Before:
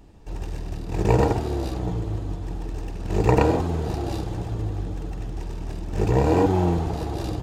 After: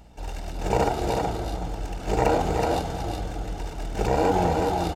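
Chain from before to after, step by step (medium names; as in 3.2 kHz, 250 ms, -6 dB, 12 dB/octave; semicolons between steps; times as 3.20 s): high-pass 42 Hz 12 dB/octave; peaking EQ 100 Hz -14.5 dB 1.9 oct; comb 1.4 ms, depth 43%; in parallel at +1.5 dB: peak limiter -17 dBFS, peak gain reduction 9 dB; on the sum: hum 60 Hz, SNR 27 dB; tempo 1.5×; on a send: delay 372 ms -4 dB; on the sum: trim -3 dB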